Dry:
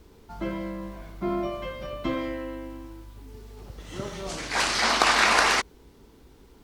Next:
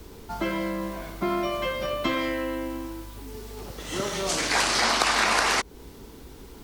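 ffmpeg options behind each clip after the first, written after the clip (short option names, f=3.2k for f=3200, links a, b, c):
-filter_complex "[0:a]acrossover=split=210|1100[a][b][c];[a]acompressor=threshold=-49dB:ratio=4[d];[b]acompressor=threshold=-36dB:ratio=4[e];[c]acompressor=threshold=-34dB:ratio=4[f];[d][e][f]amix=inputs=3:normalize=0,highshelf=f=6.3k:g=6,volume=8.5dB"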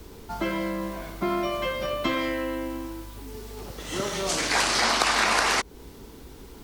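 -af anull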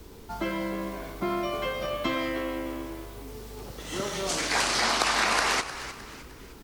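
-filter_complex "[0:a]asplit=5[a][b][c][d][e];[b]adelay=307,afreqshift=77,volume=-13dB[f];[c]adelay=614,afreqshift=154,volume=-21dB[g];[d]adelay=921,afreqshift=231,volume=-28.9dB[h];[e]adelay=1228,afreqshift=308,volume=-36.9dB[i];[a][f][g][h][i]amix=inputs=5:normalize=0,volume=-2.5dB"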